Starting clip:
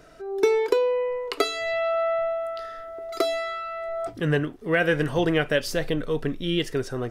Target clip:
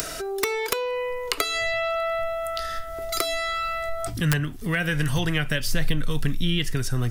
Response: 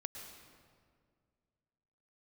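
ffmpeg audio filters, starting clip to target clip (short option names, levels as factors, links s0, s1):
-filter_complex "[0:a]acrossover=split=380[s0][s1];[s0]aeval=exprs='(mod(7.94*val(0)+1,2)-1)/7.94':c=same[s2];[s2][s1]amix=inputs=2:normalize=0,acrossover=split=690|2700[s3][s4][s5];[s3]acompressor=threshold=0.0398:ratio=4[s6];[s4]acompressor=threshold=0.0398:ratio=4[s7];[s5]acompressor=threshold=0.00562:ratio=4[s8];[s6][s7][s8]amix=inputs=3:normalize=0,asubboost=boost=9.5:cutoff=150,acompressor=mode=upward:threshold=0.0708:ratio=2.5,crystalizer=i=6.5:c=0,volume=0.794"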